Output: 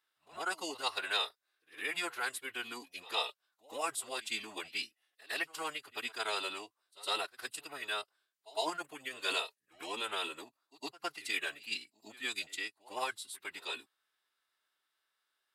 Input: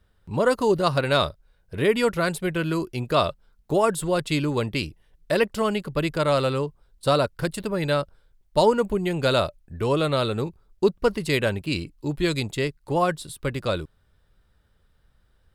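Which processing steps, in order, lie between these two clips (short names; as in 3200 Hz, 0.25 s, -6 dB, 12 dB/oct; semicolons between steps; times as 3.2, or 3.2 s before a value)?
Bessel high-pass 1500 Hz, order 2; pre-echo 0.109 s -20 dB; formant-preserving pitch shift -5.5 st; gain -5 dB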